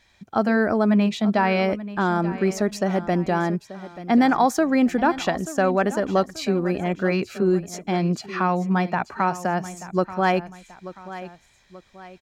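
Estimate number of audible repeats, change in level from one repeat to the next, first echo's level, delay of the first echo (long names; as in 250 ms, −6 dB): 2, −7.5 dB, −15.0 dB, 884 ms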